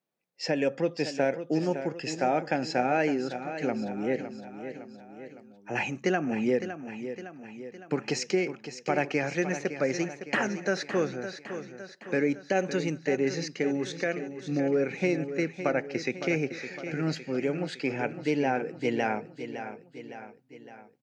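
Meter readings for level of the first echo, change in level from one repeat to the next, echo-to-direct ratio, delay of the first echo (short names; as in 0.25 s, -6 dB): -10.5 dB, -5.5 dB, -9.0 dB, 0.56 s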